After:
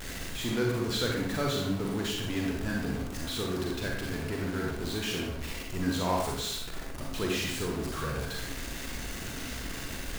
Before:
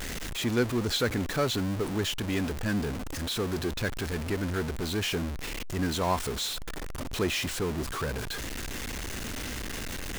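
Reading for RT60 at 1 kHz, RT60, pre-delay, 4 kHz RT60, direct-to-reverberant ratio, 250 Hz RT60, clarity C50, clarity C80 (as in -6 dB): 0.70 s, 0.75 s, 35 ms, 0.55 s, -1.5 dB, 0.85 s, 1.0 dB, 5.0 dB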